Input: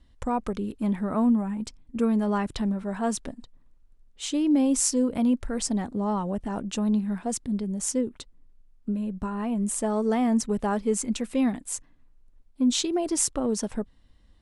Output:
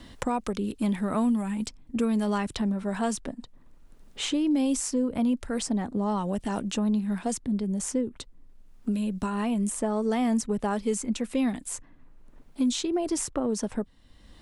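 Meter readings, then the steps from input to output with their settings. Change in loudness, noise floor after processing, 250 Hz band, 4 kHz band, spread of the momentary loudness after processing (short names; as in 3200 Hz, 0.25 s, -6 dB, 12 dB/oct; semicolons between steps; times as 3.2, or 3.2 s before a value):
-1.5 dB, -54 dBFS, -1.5 dB, -1.0 dB, 9 LU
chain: three-band squash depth 70%; gain -1.5 dB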